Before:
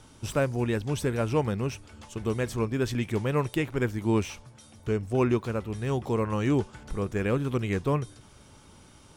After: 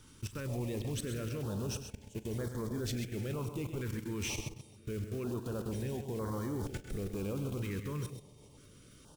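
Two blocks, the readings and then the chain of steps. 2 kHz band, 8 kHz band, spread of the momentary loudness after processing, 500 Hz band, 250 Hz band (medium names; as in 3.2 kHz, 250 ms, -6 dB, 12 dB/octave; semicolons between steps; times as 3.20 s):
-11.5 dB, -1.5 dB, 8 LU, -11.5 dB, -10.0 dB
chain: block-companded coder 5-bit; treble shelf 8.6 kHz +3.5 dB; reverse; compression 8:1, threshold -35 dBFS, peak gain reduction 15.5 dB; reverse; algorithmic reverb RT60 3.2 s, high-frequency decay 0.3×, pre-delay 115 ms, DRR 11.5 dB; level held to a coarse grid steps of 22 dB; multi-tap echo 41/100/131 ms -19/-14.5/-10.5 dB; sine folder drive 5 dB, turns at -29.5 dBFS; step-sequenced notch 2.1 Hz 700–2600 Hz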